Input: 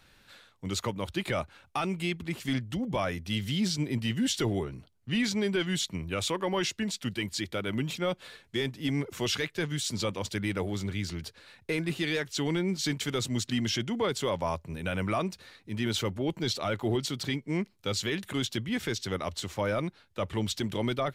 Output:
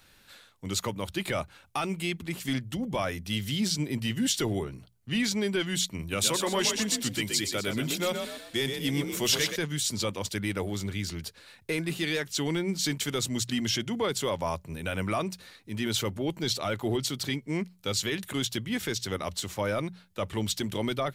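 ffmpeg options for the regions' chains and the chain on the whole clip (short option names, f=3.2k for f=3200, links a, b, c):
-filter_complex "[0:a]asettb=1/sr,asplit=3[a][b][c];[a]atrim=end=5.994[d];[b]atrim=start=5.99:end=9.56,asetpts=PTS-STARTPTS,afade=t=in:d=0.004:c=qsin,afade=t=out:st=3.566:d=0.004:c=qsin,highshelf=f=4.2k:g=6,asplit=6[e][f][g][h][i][j];[f]adelay=124,afreqshift=37,volume=-6dB[k];[g]adelay=248,afreqshift=74,volume=-14dB[l];[h]adelay=372,afreqshift=111,volume=-21.9dB[m];[i]adelay=496,afreqshift=148,volume=-29.9dB[n];[j]adelay=620,afreqshift=185,volume=-37.8dB[o];[e][k][l][m][n][o]amix=inputs=6:normalize=0,atrim=end_sample=157437[p];[c]atrim=start=9.556[q];[d][p]acrossfade=d=0.004:c1=hsin:c2=qsin[r];[r][q]acrossfade=d=0.004:c1=qsin:c2=hsin,highshelf=f=7k:g=9.5,bandreject=f=60:t=h:w=6,bandreject=f=120:t=h:w=6,bandreject=f=180:t=h:w=6"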